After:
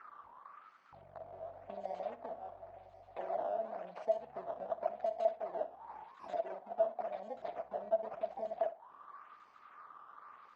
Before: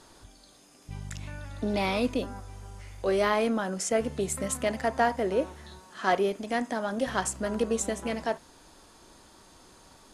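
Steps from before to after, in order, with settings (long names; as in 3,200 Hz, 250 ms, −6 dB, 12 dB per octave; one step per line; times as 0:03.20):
samples in bit-reversed order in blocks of 32 samples
bass and treble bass +11 dB, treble +10 dB
sample-and-hold swept by an LFO 11×, swing 160% 0.96 Hz
high-frequency loss of the air 99 metres
downward compressor 5 to 1, threshold −30 dBFS, peak gain reduction 17.5 dB
envelope filter 690–1,500 Hz, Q 13, down, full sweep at −30.5 dBFS
wrong playback speed 25 fps video run at 24 fps
flutter between parallel walls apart 10.6 metres, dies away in 0.24 s
level +7 dB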